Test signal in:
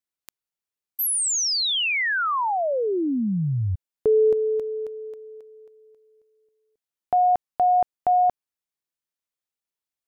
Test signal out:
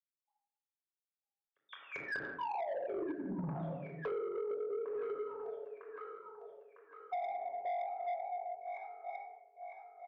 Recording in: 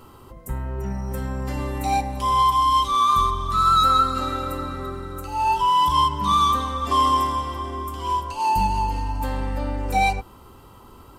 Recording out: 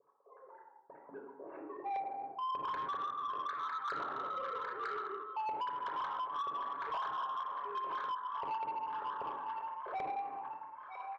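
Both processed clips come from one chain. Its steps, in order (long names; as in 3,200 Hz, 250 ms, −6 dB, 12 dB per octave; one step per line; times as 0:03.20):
three sine waves on the formant tracks
wave folding −15 dBFS
gate pattern "x.xxxxx..xxxx.x" 151 BPM −60 dB
auto-filter low-pass saw up 5.1 Hz 390–1,700 Hz
high-pass filter 250 Hz 6 dB per octave
high-shelf EQ 2,400 Hz −11.5 dB
comb filter 7.2 ms, depth 44%
delay with a high-pass on its return 953 ms, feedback 48%, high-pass 1,500 Hz, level −7.5 dB
tape wow and flutter 2.1 Hz 23 cents
rectangular room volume 2,800 cubic metres, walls furnished, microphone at 5.4 metres
downward compressor 12 to 1, threshold −27 dBFS
soft clipping −27 dBFS
level −5.5 dB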